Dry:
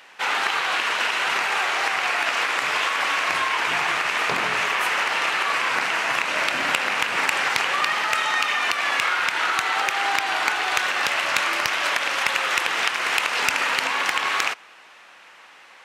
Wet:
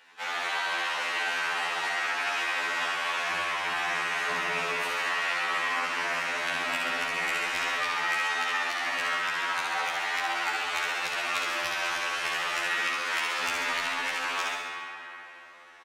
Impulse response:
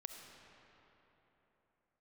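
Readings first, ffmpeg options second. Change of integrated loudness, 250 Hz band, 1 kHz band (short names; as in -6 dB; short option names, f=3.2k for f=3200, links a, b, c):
-6.5 dB, -6.0 dB, -7.0 dB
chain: -filter_complex "[0:a]aecho=1:1:67|134|201|268|335|402|469|536|603:0.631|0.379|0.227|0.136|0.0818|0.0491|0.0294|0.0177|0.0106[a];[1:a]atrim=start_sample=2205[b];[a][b]afir=irnorm=-1:irlink=0,afftfilt=real='re*2*eq(mod(b,4),0)':imag='im*2*eq(mod(b,4),0)':win_size=2048:overlap=0.75,volume=-2.5dB"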